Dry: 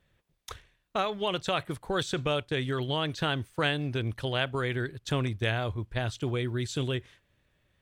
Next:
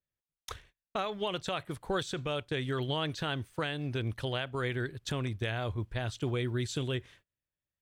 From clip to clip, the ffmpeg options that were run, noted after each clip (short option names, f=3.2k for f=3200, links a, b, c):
-af "agate=range=-26dB:threshold=-57dB:ratio=16:detection=peak,alimiter=limit=-22dB:level=0:latency=1:release=365"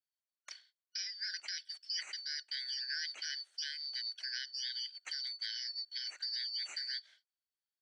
-af "afftfilt=real='real(if(lt(b,272),68*(eq(floor(b/68),0)*3+eq(floor(b/68),1)*2+eq(floor(b/68),2)*1+eq(floor(b/68),3)*0)+mod(b,68),b),0)':imag='imag(if(lt(b,272),68*(eq(floor(b/68),0)*3+eq(floor(b/68),1)*2+eq(floor(b/68),2)*1+eq(floor(b/68),3)*0)+mod(b,68),b),0)':win_size=2048:overlap=0.75,highpass=f=450:w=0.5412,highpass=f=450:w=1.3066,equalizer=f=470:t=q:w=4:g=-9,equalizer=f=1k:t=q:w=4:g=-5,equalizer=f=1.5k:t=q:w=4:g=6,lowpass=f=8.6k:w=0.5412,lowpass=f=8.6k:w=1.3066,volume=-7.5dB"